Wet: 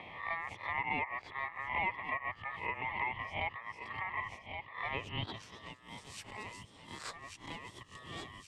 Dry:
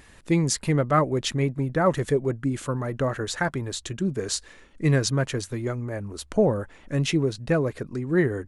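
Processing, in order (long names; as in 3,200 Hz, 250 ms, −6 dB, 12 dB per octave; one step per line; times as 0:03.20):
peak hold with a rise ahead of every peak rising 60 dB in 0.31 s
asymmetric clip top −23.5 dBFS
three-way crossover with the lows and the highs turned down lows −16 dB, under 250 Hz, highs −14 dB, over 2,300 Hz
feedback echo with a high-pass in the loop 1,123 ms, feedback 37%, high-pass 420 Hz, level −13 dB
band-pass filter sweep 680 Hz → 6,400 Hz, 0:04.82–0:05.77
ring modulation 1,500 Hz
parametric band 95 Hz +12.5 dB 0.99 octaves
multiband upward and downward compressor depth 70%
level +1 dB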